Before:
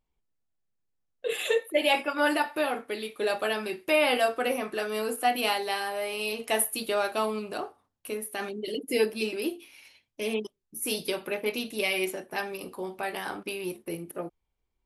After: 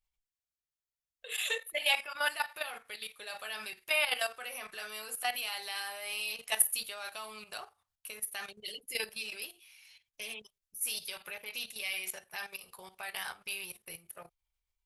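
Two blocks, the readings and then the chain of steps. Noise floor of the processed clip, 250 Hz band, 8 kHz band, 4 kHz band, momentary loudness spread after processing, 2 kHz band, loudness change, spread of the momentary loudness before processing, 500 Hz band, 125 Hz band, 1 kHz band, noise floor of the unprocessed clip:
below −85 dBFS, −25.5 dB, 0.0 dB, −2.5 dB, 17 LU, −4.0 dB, −6.0 dB, 12 LU, −16.5 dB, can't be measured, −11.0 dB, −80 dBFS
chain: output level in coarse steps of 12 dB
guitar amp tone stack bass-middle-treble 10-0-10
level +4.5 dB

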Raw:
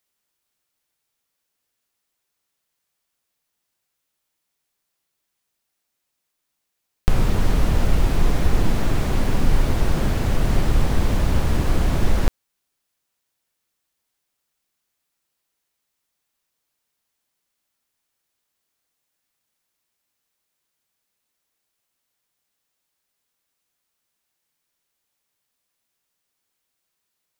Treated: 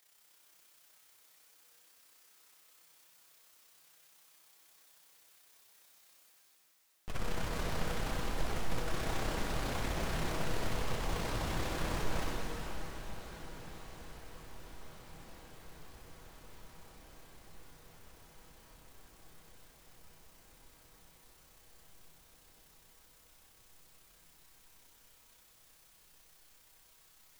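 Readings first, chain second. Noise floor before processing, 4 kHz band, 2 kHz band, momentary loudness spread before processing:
−78 dBFS, −7.5 dB, −8.0 dB, 2 LU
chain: low-shelf EQ 330 Hz −10 dB
reversed playback
upward compression, threshold −42 dBFS
reversed playback
tuned comb filter 160 Hz, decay 0.35 s, harmonics all, mix 70%
amplitude modulation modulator 32 Hz, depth 65%
hard clipping −36 dBFS, distortion −7 dB
on a send: feedback delay with all-pass diffusion 1,735 ms, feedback 67%, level −16 dB
on the sum: dense smooth reverb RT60 4.8 s, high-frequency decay 0.95×, DRR −3 dB
highs frequency-modulated by the lows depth 0.37 ms
level +2 dB

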